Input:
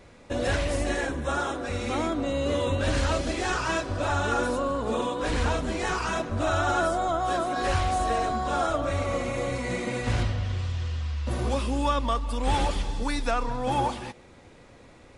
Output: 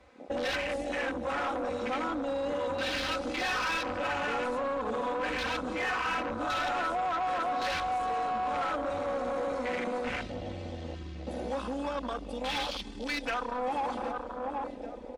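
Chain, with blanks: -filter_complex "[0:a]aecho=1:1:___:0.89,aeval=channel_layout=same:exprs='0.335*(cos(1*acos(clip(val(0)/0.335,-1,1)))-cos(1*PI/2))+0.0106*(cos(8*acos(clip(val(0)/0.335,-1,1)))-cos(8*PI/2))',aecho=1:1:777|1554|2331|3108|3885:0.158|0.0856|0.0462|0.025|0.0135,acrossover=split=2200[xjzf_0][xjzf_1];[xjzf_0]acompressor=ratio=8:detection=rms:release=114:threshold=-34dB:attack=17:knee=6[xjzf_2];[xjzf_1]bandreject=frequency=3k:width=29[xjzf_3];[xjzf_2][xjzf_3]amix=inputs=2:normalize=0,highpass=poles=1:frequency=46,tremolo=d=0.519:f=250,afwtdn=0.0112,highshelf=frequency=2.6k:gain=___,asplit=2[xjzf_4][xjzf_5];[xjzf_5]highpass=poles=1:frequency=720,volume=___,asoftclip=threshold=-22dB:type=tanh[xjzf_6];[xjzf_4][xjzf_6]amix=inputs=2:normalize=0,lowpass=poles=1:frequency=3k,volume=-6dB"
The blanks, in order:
3.9, -2.5, 20dB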